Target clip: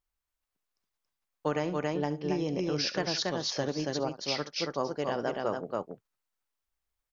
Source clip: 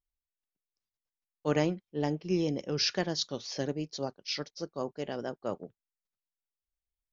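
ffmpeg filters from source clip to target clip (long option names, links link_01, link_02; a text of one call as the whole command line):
ffmpeg -i in.wav -filter_complex "[0:a]asplit=2[link_01][link_02];[link_02]aecho=0:1:68|278:0.168|0.631[link_03];[link_01][link_03]amix=inputs=2:normalize=0,acompressor=threshold=-32dB:ratio=5,equalizer=frequency=1100:width_type=o:width=1.7:gain=6.5,volume=3.5dB" out.wav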